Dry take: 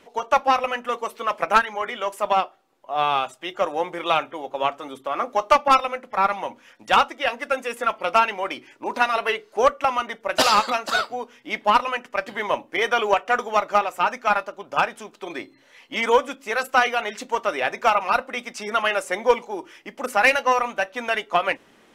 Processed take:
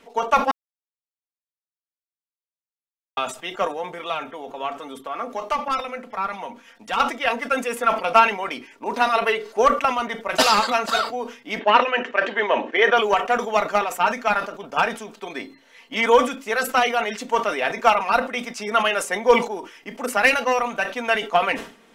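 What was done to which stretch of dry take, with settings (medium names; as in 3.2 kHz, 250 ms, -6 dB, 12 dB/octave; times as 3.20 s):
0.51–3.17 s: mute
3.67–7.00 s: compression 1.5:1, threshold -35 dBFS
11.59–12.97 s: cabinet simulation 270–5400 Hz, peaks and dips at 360 Hz +8 dB, 560 Hz +5 dB, 1.7 kHz +7 dB, 2.8 kHz +4 dB, 4.9 kHz -9 dB
whole clip: comb 4.4 ms, depth 49%; decay stretcher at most 130 dB/s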